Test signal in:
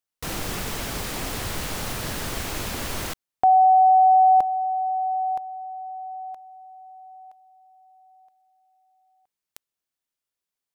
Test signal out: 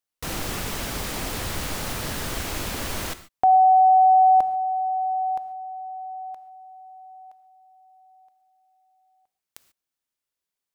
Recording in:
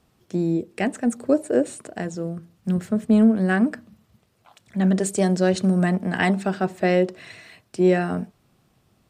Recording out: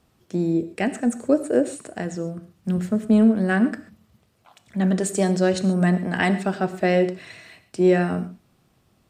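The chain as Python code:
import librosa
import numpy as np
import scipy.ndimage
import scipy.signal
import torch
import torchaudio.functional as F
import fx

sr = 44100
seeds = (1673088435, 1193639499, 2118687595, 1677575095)

y = fx.rev_gated(x, sr, seeds[0], gate_ms=160, shape='flat', drr_db=12.0)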